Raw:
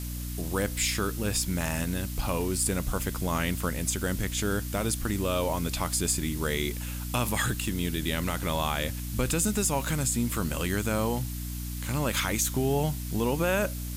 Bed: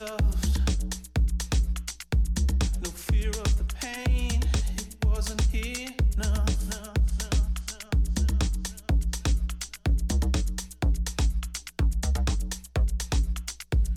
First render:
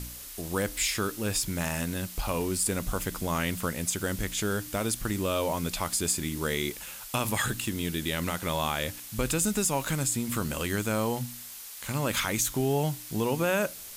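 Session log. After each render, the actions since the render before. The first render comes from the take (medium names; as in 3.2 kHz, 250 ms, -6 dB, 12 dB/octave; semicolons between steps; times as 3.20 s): de-hum 60 Hz, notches 5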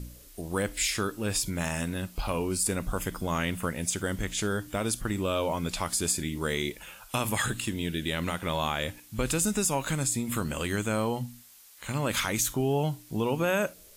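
noise print and reduce 11 dB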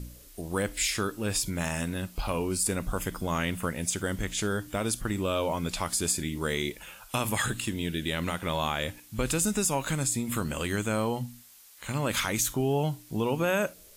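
no audible change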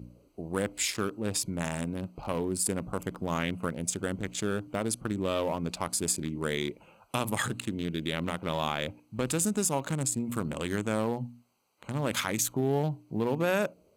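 local Wiener filter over 25 samples; high-pass 110 Hz 12 dB/octave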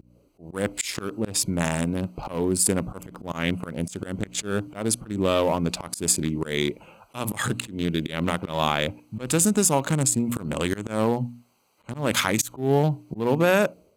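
level rider gain up to 8 dB; slow attack 158 ms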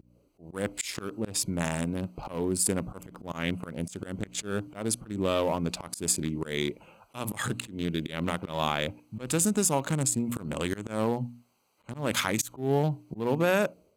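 trim -5 dB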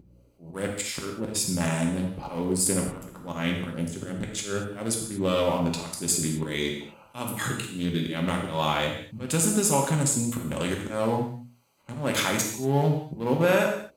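gated-style reverb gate 260 ms falling, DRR 0 dB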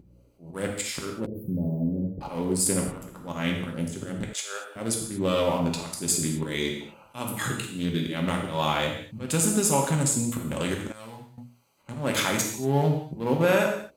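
1.26–2.21 s: inverse Chebyshev band-stop 1.5–8.2 kHz, stop band 60 dB; 4.33–4.76 s: high-pass 580 Hz 24 dB/octave; 10.92–11.38 s: amplifier tone stack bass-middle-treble 5-5-5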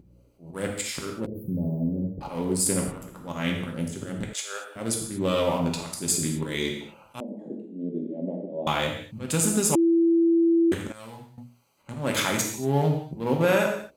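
7.20–8.67 s: elliptic band-pass 200–630 Hz; 9.75–10.72 s: bleep 334 Hz -16.5 dBFS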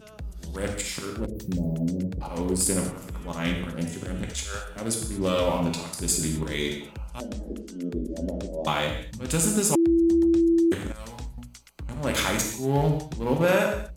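add bed -13 dB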